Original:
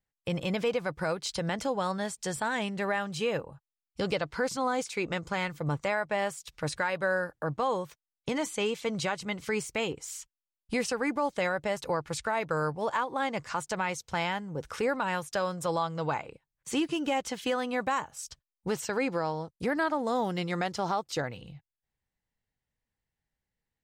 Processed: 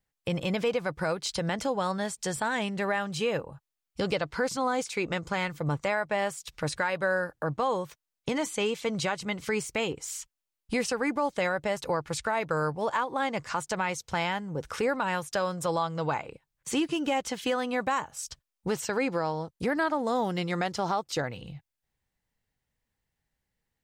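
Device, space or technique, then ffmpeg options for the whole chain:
parallel compression: -filter_complex "[0:a]asplit=2[s0][s1];[s1]acompressor=threshold=0.01:ratio=6,volume=0.708[s2];[s0][s2]amix=inputs=2:normalize=0"

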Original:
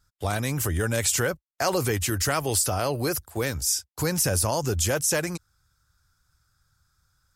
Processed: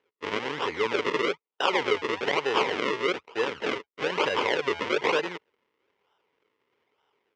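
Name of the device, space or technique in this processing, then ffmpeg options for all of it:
circuit-bent sampling toy: -af "acrusher=samples=39:mix=1:aa=0.000001:lfo=1:lforange=39:lforate=1.1,highpass=430,equalizer=f=430:t=q:w=4:g=8,equalizer=f=670:t=q:w=4:g=-8,equalizer=f=970:t=q:w=4:g=6,equalizer=f=2100:t=q:w=4:g=8,equalizer=f=3000:t=q:w=4:g=6,equalizer=f=4300:t=q:w=4:g=-4,lowpass=f=5200:w=0.5412,lowpass=f=5200:w=1.3066"

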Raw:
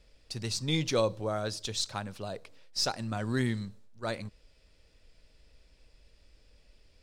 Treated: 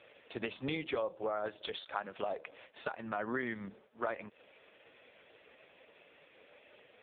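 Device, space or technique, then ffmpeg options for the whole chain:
voicemail: -filter_complex "[0:a]asettb=1/sr,asplit=3[s0][s1][s2];[s0]atrim=end=0.994[s3];[s1]atrim=start=0.99:end=1.52,asetpts=PTS-STARTPTS,afade=t=in:d=0.004:c=qsin,afade=t=out:st=0.526:d=0.004:c=qsin,equalizer=f=5200:w=1.6:g=-5[s4];[s2]atrim=start=1.516[s5];[s3][s4]acrossfade=d=0.004:c1=hsin:c2=qsin[s6];[s6][s5]acrossfade=d=0.004:c1=qsin:c2=hsin,highpass=420,lowpass=2900,acompressor=threshold=0.00355:ratio=8,volume=7.08" -ar 8000 -c:a libopencore_amrnb -b:a 4750

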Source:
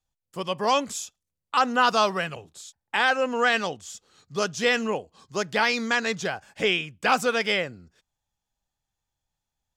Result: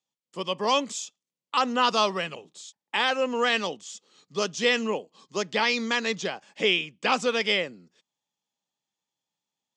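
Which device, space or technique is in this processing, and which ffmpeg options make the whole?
television speaker: -filter_complex "[0:a]highpass=f=180:w=0.5412,highpass=f=180:w=1.3066,equalizer=f=720:t=q:w=4:g=-5,equalizer=f=1500:t=q:w=4:g=-8,equalizer=f=3200:t=q:w=4:g=3,lowpass=f=8000:w=0.5412,lowpass=f=8000:w=1.3066,asettb=1/sr,asplit=3[s0][s1][s2];[s0]atrim=end=5.444[s3];[s1]atrim=start=5.44:end=7.39,asetpts=PTS-STARTPTS,afade=t=in:d=0.004:c=qsin,afade=t=out:st=1.946:d=0.004:c=qsin,lowpass=8900[s4];[s2]atrim=start=7.386[s5];[s3][s4]acrossfade=d=0.004:c1=hsin:c2=qsin[s6];[s6][s5]acrossfade=d=0.004:c1=qsin:c2=hsin"

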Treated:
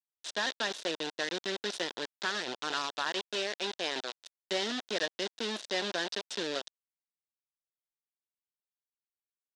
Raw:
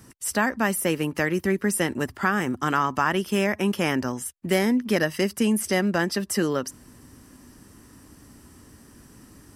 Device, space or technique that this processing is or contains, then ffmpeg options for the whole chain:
hand-held game console: -filter_complex "[0:a]asettb=1/sr,asplit=3[s0][s1][s2];[s0]atrim=end=3.114[s3];[s1]atrim=start=3.11:end=4.49,asetpts=PTS-STARTPTS,afade=t=in:d=0.004:c=qsin,afade=t=out:st=1.376:d=0.004:c=qsin,highpass=240[s4];[s2]atrim=start=4.486[s5];[s3][s4]acrossfade=d=0.004:c1=hsin:c2=qsin[s6];[s6][s5]acrossfade=d=0.004:c1=qsin:c2=hsin,acrusher=bits=3:mix=0:aa=0.000001,highpass=480,equalizer=f=820:t=q:w=4:g=-5,equalizer=f=1200:t=q:w=4:g=-9,equalizer=f=2200:t=q:w=4:g=-7,equalizer=f=3700:t=q:w=4:g=8,lowpass=f=6000:w=0.5412,lowpass=f=6000:w=1.3066,volume=0.473"

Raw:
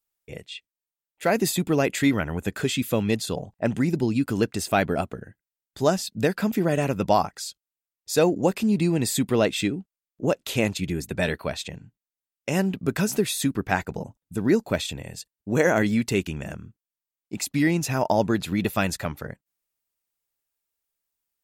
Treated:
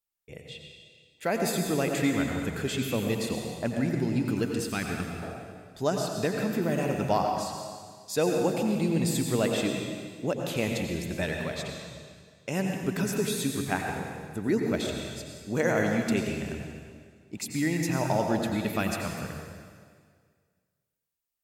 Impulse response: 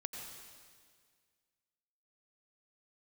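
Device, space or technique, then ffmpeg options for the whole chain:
stairwell: -filter_complex "[1:a]atrim=start_sample=2205[s0];[0:a][s0]afir=irnorm=-1:irlink=0,asettb=1/sr,asplit=3[s1][s2][s3];[s1]atrim=end=4.694[s4];[s2]atrim=start=4.69:end=5.22,asetpts=PTS-STARTPTS,afade=t=in:d=0.004:c=qsin,afade=t=out:st=0.526:d=0.004:c=qsin,equalizer=f=650:w=1.4:g=-14[s5];[s3]atrim=start=5.216[s6];[s4][s5]acrossfade=d=0.004:c1=hsin:c2=qsin[s7];[s7][s6]acrossfade=d=0.004:c1=qsin:c2=hsin,volume=0.708"

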